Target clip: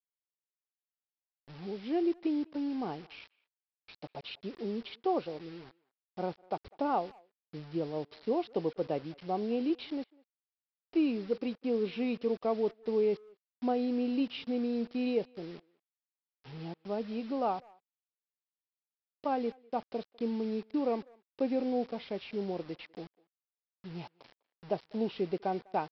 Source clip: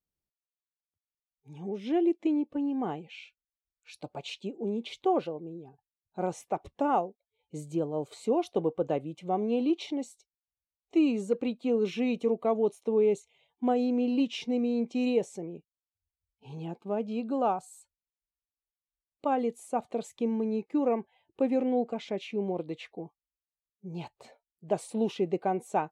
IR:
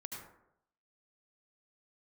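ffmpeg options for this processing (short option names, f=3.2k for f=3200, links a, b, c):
-filter_complex "[0:a]aresample=11025,acrusher=bits=7:mix=0:aa=0.000001,aresample=44100,asplit=2[a][b];[b]adelay=200,highpass=300,lowpass=3.4k,asoftclip=type=hard:threshold=-23dB,volume=-25dB[c];[a][c]amix=inputs=2:normalize=0,volume=-4dB"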